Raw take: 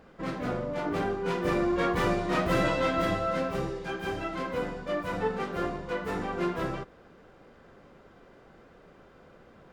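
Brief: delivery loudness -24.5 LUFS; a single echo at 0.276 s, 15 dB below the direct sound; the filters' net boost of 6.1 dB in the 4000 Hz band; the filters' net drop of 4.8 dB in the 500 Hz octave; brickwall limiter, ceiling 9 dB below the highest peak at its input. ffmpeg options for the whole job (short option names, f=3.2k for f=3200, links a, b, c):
-af "equalizer=f=500:t=o:g=-6.5,equalizer=f=4k:t=o:g=8,alimiter=limit=-24dB:level=0:latency=1,aecho=1:1:276:0.178,volume=9.5dB"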